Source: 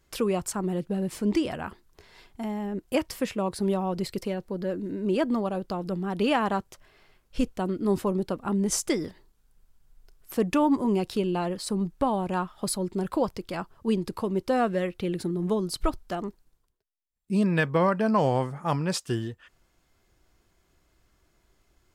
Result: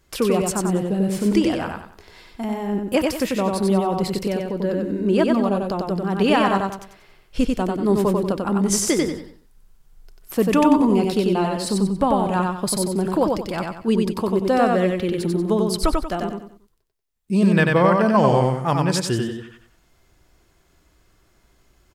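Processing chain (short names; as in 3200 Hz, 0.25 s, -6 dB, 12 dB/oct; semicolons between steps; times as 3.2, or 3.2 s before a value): feedback echo 93 ms, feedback 34%, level -3 dB; gain +5.5 dB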